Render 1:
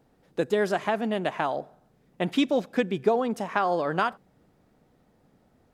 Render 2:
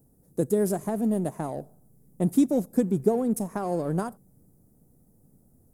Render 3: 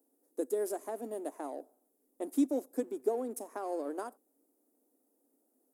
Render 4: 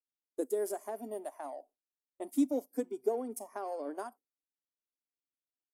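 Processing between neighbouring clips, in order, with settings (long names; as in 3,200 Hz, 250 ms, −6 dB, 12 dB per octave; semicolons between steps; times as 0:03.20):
drawn EQ curve 140 Hz 0 dB, 420 Hz −8 dB, 3,000 Hz −30 dB, 10,000 Hz +10 dB; in parallel at −8 dB: slack as between gear wheels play −36.5 dBFS; on the sum: level +5.5 dB
elliptic high-pass filter 270 Hz, stop band 40 dB; level −7 dB
noise reduction from a noise print of the clip's start 16 dB; noise gate with hold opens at −48 dBFS; notch filter 1,300 Hz, Q 19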